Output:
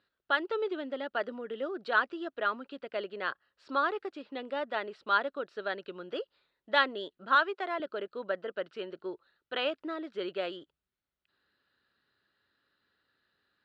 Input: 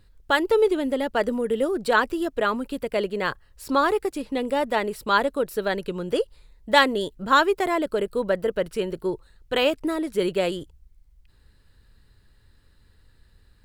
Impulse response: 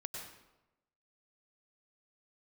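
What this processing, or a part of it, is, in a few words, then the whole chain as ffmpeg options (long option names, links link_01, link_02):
phone earpiece: -filter_complex "[0:a]highpass=390,equalizer=frequency=470:width_type=q:width=4:gain=-6,equalizer=frequency=920:width_type=q:width=4:gain=-6,equalizer=frequency=1400:width_type=q:width=4:gain=5,equalizer=frequency=2200:width_type=q:width=4:gain=-5,lowpass=frequency=4000:width=0.5412,lowpass=frequency=4000:width=1.3066,asettb=1/sr,asplit=3[link_01][link_02][link_03];[link_01]atrim=end=7.354[link_04];[link_02]atrim=start=7.35:end=7.8,asetpts=PTS-STARTPTS,afade=type=in:duration=0.004:curve=qsin,afade=type=out:start_time=0.446:duration=0.004:curve=qsin,highpass=370[link_05];[link_03]atrim=start=7.796[link_06];[link_04][link_05]acrossfade=duration=0.004:curve1=hsin:curve2=qsin[link_07];[link_07][link_06]acrossfade=duration=0.004:curve1=qsin:curve2=hsin,volume=-7dB"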